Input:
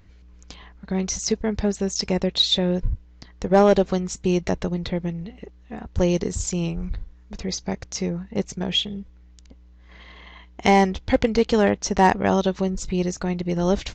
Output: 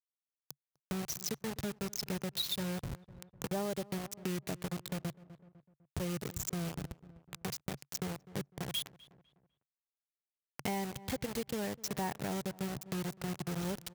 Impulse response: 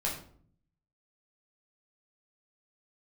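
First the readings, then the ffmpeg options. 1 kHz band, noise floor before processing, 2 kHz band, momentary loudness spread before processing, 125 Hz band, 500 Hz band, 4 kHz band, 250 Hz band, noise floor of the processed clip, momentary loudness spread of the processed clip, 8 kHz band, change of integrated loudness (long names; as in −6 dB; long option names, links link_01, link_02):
−19.0 dB, −50 dBFS, −15.0 dB, 15 LU, −13.5 dB, −19.0 dB, −15.0 dB, −16.0 dB, below −85 dBFS, 11 LU, −11.0 dB, −16.0 dB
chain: -filter_complex "[0:a]acrusher=bits=3:mix=0:aa=0.000001,equalizer=frequency=140:width=2.6:gain=12,asplit=2[link_01][link_02];[link_02]adelay=251,lowpass=frequency=1700:poles=1,volume=-23.5dB,asplit=2[link_03][link_04];[link_04]adelay=251,lowpass=frequency=1700:poles=1,volume=0.43,asplit=2[link_05][link_06];[link_06]adelay=251,lowpass=frequency=1700:poles=1,volume=0.43[link_07];[link_01][link_03][link_05][link_07]amix=inputs=4:normalize=0,acompressor=threshold=-29dB:ratio=3,highpass=54,highshelf=frequency=5700:gain=5.5,volume=-8.5dB"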